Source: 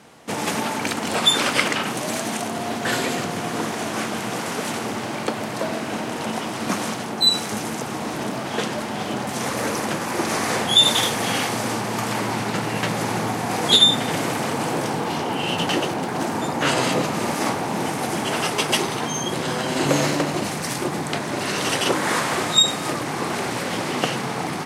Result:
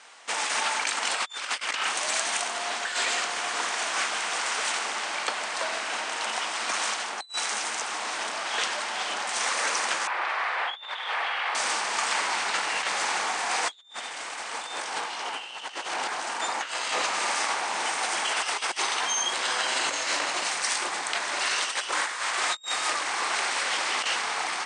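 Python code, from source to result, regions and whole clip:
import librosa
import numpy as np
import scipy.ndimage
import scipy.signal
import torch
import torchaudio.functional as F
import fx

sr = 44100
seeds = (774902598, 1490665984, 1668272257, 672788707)

y = fx.chain(x, sr, fx.highpass(hz=610.0, slope=12),
    fx.over_compress(threshold_db=-26.0, ratio=-1.0),
    fx.air_absorb(metres=460.0), at=(10.07, 11.55))
y = fx.chain(y, sr, fx.echo_single(ms=851, db=-21.0),
    fx.env_flatten(amount_pct=50), at=(13.76, 16.41))
y = scipy.signal.sosfilt(scipy.signal.butter(2, 1100.0, 'highpass', fs=sr, output='sos'), y)
y = fx.over_compress(y, sr, threshold_db=-28.0, ratio=-0.5)
y = scipy.signal.sosfilt(scipy.signal.butter(16, 9400.0, 'lowpass', fs=sr, output='sos'), y)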